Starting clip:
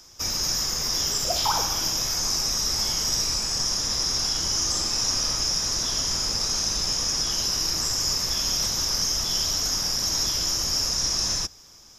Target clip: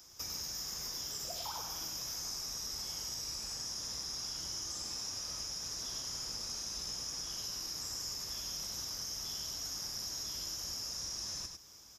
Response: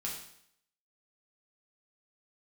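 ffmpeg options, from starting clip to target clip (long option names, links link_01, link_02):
-af "highpass=40,highshelf=frequency=12000:gain=11,acompressor=threshold=-31dB:ratio=6,aecho=1:1:100:0.531,volume=-8.5dB"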